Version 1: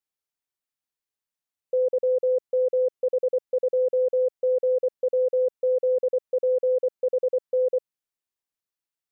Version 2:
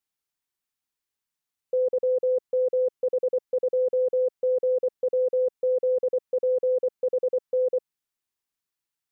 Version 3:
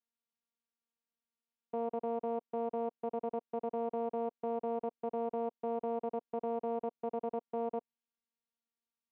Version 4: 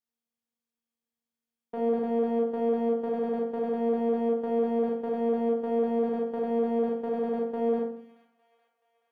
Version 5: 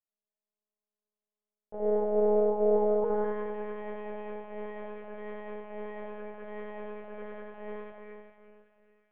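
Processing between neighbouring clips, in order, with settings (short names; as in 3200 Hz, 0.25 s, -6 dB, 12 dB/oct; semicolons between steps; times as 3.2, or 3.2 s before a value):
bell 570 Hz -5.5 dB 0.55 oct; gain +3 dB
vocoder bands 4, saw 232 Hz; limiter -25.5 dBFS, peak gain reduction 9.5 dB; gain -2 dB
sample leveller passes 1; thin delay 0.428 s, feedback 53%, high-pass 1900 Hz, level -13 dB; reverb RT60 0.55 s, pre-delay 30 ms, DRR -1.5 dB
band-pass sweep 570 Hz -> 2100 Hz, 2.8–3.39; Schroeder reverb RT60 2.5 s, combs from 28 ms, DRR -1.5 dB; monotone LPC vocoder at 8 kHz 210 Hz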